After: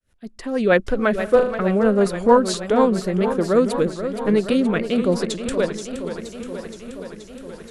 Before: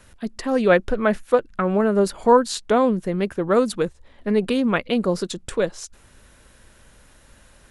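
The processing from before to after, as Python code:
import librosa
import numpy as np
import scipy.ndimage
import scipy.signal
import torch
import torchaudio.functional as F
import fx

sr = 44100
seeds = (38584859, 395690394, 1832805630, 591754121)

y = fx.fade_in_head(x, sr, length_s=0.79)
y = fx.rotary_switch(y, sr, hz=6.3, then_hz=0.85, switch_at_s=2.65)
y = fx.room_flutter(y, sr, wall_m=6.5, rt60_s=0.53, at=(1.18, 1.61), fade=0.02)
y = fx.echo_warbled(y, sr, ms=474, feedback_pct=73, rate_hz=2.8, cents=131, wet_db=-10.5)
y = F.gain(torch.from_numpy(y), 3.0).numpy()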